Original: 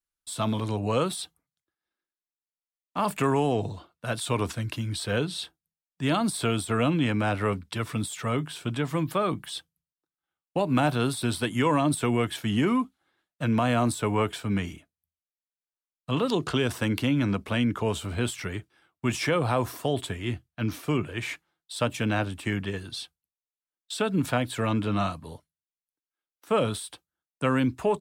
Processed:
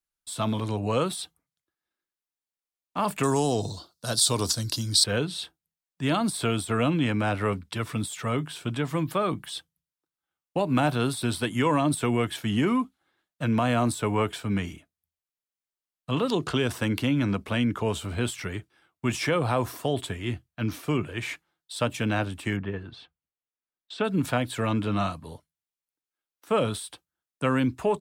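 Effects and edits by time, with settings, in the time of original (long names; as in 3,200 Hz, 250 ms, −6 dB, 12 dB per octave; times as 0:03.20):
0:03.23–0:05.04: high shelf with overshoot 3,400 Hz +11.5 dB, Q 3
0:22.56–0:24.03: low-pass filter 1,700 Hz → 3,400 Hz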